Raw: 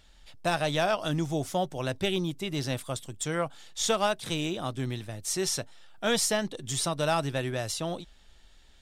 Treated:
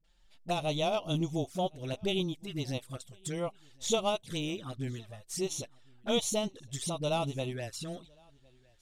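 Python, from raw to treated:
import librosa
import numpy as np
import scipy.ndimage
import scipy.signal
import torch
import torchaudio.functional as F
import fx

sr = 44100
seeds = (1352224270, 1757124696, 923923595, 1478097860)

p1 = fx.dispersion(x, sr, late='highs', ms=42.0, hz=320.0)
p2 = fx.env_flanger(p1, sr, rest_ms=6.5, full_db=-26.5)
p3 = p2 + fx.echo_single(p2, sr, ms=1061, db=-23.0, dry=0)
y = fx.upward_expand(p3, sr, threshold_db=-42.0, expansion=1.5)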